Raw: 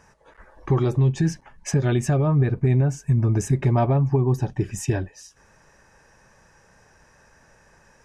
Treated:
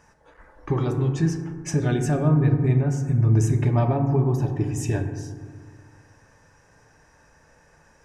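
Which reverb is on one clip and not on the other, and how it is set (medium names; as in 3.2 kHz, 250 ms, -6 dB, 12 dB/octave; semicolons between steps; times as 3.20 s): FDN reverb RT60 1.8 s, low-frequency decay 1.3×, high-frequency decay 0.3×, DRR 4.5 dB; trim -2.5 dB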